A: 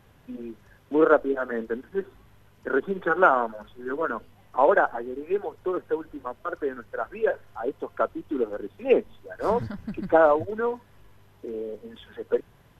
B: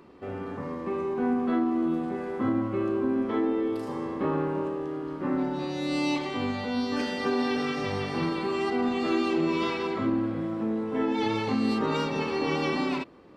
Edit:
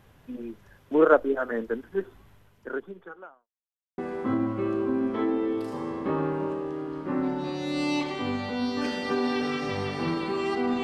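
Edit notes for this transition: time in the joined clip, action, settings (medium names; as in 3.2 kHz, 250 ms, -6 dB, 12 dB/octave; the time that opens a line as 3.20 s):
A
2.31–3.49 s: fade out quadratic
3.49–3.98 s: mute
3.98 s: go over to B from 2.13 s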